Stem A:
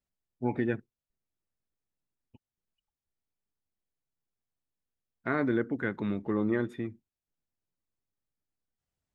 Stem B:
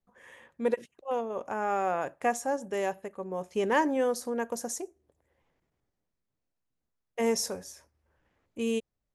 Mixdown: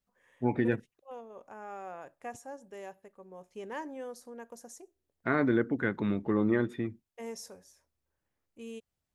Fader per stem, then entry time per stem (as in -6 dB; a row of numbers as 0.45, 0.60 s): +1.5, -14.0 dB; 0.00, 0.00 s